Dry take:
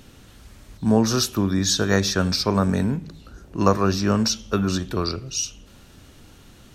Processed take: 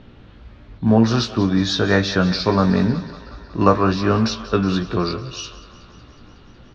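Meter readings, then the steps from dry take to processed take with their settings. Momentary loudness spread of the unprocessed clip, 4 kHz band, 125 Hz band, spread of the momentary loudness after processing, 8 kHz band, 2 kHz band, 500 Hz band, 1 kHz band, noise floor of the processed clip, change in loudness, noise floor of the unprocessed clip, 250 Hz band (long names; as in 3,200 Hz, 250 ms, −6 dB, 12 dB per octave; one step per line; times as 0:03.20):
8 LU, 0.0 dB, +3.5 dB, 15 LU, −10.0 dB, +4.5 dB, +3.5 dB, +4.5 dB, −46 dBFS, +3.0 dB, −49 dBFS, +3.5 dB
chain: low-pass filter 4,200 Hz 24 dB per octave
double-tracking delay 17 ms −5.5 dB
on a send: feedback echo with a high-pass in the loop 184 ms, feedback 78%, high-pass 420 Hz, level −14.5 dB
on the sum: one half of a high-frequency compander decoder only
level +3 dB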